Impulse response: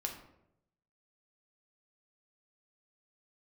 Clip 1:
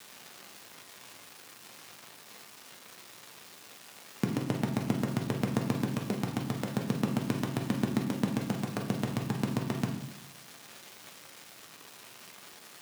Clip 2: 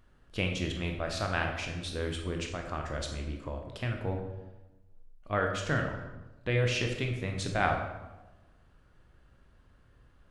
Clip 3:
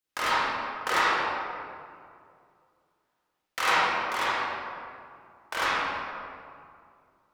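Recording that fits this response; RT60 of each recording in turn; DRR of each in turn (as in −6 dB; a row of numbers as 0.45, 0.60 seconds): 1; 0.80, 1.1, 2.3 seconds; 1.5, 2.5, −10.0 decibels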